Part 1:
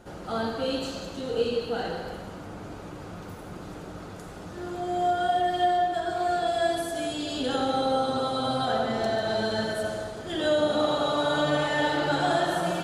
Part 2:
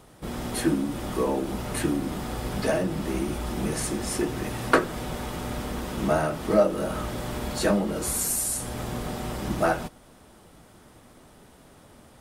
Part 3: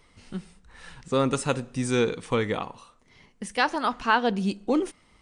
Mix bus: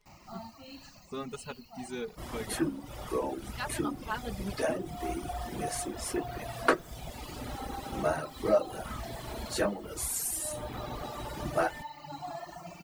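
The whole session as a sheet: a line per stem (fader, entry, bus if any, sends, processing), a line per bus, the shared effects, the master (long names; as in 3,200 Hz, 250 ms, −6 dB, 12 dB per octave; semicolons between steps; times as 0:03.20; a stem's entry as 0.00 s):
−10.0 dB, 0.00 s, no send, mains-hum notches 60/120/180/240/300/360/420/480/540 Hz; bit reduction 7 bits; phaser with its sweep stopped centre 2,300 Hz, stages 8
−4.5 dB, 1.95 s, no send, parametric band 200 Hz −7 dB 0.63 octaves
−16.5 dB, 0.00 s, no send, comb filter 4.8 ms, depth 96%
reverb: not used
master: reverb reduction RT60 1.5 s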